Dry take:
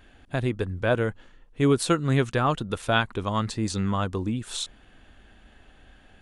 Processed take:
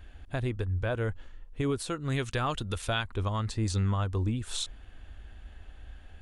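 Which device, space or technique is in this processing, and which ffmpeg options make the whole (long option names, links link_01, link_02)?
car stereo with a boomy subwoofer: -filter_complex "[0:a]lowshelf=frequency=110:width_type=q:width=1.5:gain=10,alimiter=limit=-18dB:level=0:latency=1:release=293,asettb=1/sr,asplit=3[link_01][link_02][link_03];[link_01]atrim=end=1.984[link_04];[link_02]atrim=start=1.98:end=3.04,asetpts=PTS-STARTPTS,afade=type=in:duration=0.004:curve=qsin,afade=type=out:start_time=1.056:duration=0.004:curve=qsin,adynamicequalizer=threshold=0.00631:dfrequency=1900:dqfactor=0.7:tfrequency=1900:tqfactor=0.7:attack=5:release=100:ratio=0.375:range=3.5:mode=boostabove:tftype=highshelf[link_05];[link_03]atrim=start=3.036[link_06];[link_04][link_05]acrossfade=duration=0.004:curve1=hsin:curve2=qsin[link_07];[link_07][link_06]acrossfade=duration=0.004:curve1=qsin:curve2=hsin,volume=-2.5dB"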